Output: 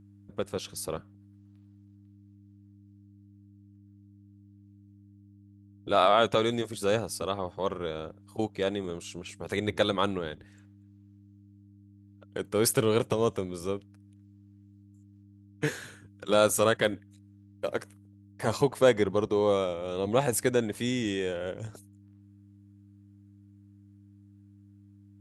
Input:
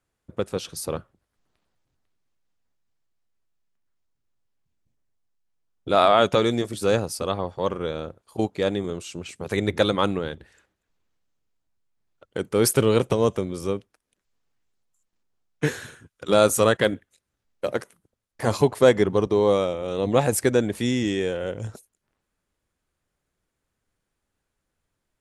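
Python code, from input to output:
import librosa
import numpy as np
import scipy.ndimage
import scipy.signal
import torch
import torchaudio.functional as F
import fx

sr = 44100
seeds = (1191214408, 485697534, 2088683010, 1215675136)

y = fx.dmg_buzz(x, sr, base_hz=100.0, harmonics=3, level_db=-48.0, tilt_db=-4, odd_only=False)
y = fx.low_shelf(y, sr, hz=460.0, db=-3.0)
y = F.gain(torch.from_numpy(y), -4.0).numpy()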